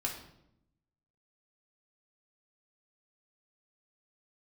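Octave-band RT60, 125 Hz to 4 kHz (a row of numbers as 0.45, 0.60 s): 1.2, 1.1, 0.85, 0.70, 0.60, 0.60 s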